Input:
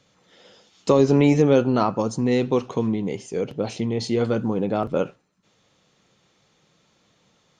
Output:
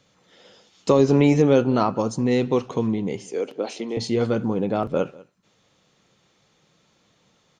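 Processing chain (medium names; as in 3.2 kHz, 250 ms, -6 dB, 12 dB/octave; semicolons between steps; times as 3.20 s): 3.25–3.97 s: high-pass 270 Hz 24 dB/octave; delay 194 ms -22.5 dB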